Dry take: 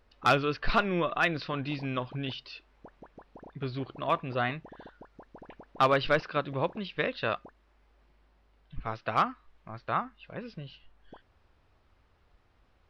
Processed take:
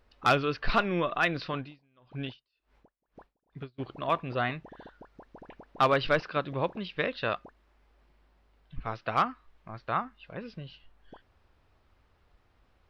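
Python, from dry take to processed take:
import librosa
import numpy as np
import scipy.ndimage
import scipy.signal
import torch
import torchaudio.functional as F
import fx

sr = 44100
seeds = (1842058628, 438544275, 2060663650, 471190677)

y = fx.tremolo_db(x, sr, hz=fx.line((1.56, 1.3), (3.78, 3.0)), depth_db=37, at=(1.56, 3.78), fade=0.02)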